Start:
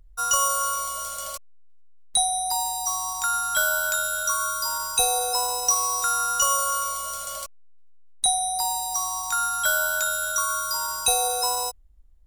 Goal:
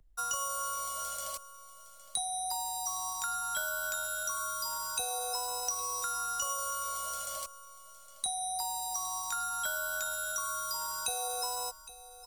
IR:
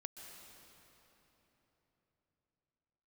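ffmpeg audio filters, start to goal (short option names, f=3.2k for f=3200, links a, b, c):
-filter_complex "[0:a]acrossover=split=140|390[a][b][c];[a]acompressor=threshold=-56dB:ratio=4[d];[b]acompressor=threshold=-52dB:ratio=4[e];[c]acompressor=threshold=-27dB:ratio=4[f];[d][e][f]amix=inputs=3:normalize=0,asplit=2[g][h];[h]aecho=0:1:812:0.158[i];[g][i]amix=inputs=2:normalize=0,volume=-5.5dB"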